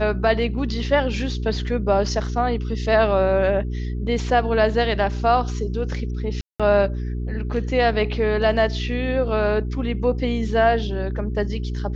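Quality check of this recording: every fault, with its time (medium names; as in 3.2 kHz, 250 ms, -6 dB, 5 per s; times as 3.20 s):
hum 60 Hz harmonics 7 -26 dBFS
6.41–6.60 s: dropout 186 ms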